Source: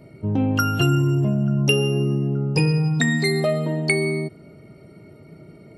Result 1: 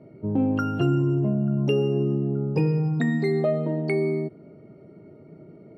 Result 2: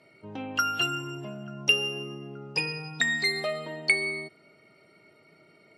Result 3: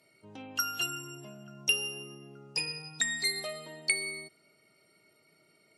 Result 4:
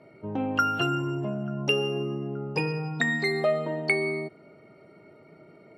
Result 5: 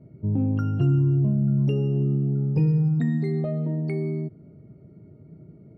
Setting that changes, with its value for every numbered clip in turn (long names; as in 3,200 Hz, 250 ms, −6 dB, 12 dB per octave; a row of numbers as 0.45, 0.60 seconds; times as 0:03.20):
resonant band-pass, frequency: 360, 2,900, 7,800, 1,100, 110 Hertz